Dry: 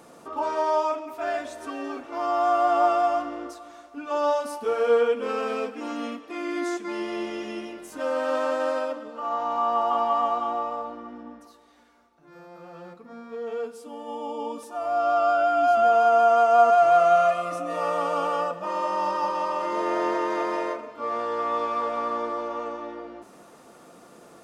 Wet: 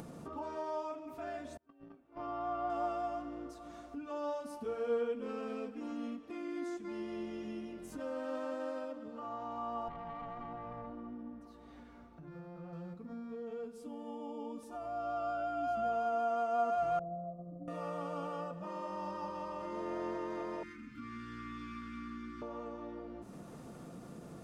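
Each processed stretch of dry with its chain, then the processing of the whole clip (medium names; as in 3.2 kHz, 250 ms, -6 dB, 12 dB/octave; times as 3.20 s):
1.57–2.70 s: low-pass 3.4 kHz + gate -29 dBFS, range -36 dB + doubling 18 ms -12.5 dB
9.88–12.73 s: tone controls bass -1 dB, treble -9 dB + compression 2.5:1, threshold -28 dBFS + valve stage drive 23 dB, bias 0.45
16.99–17.68 s: expander -25 dBFS + Gaussian low-pass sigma 15 samples
20.63–22.42 s: Chebyshev band-stop 290–1400 Hz, order 3 + peaking EQ 2.2 kHz +7 dB 0.26 oct
whole clip: FFT filter 150 Hz 0 dB, 370 Hz -13 dB, 950 Hz -18 dB; upward compressor, threshold -39 dBFS; trim +1 dB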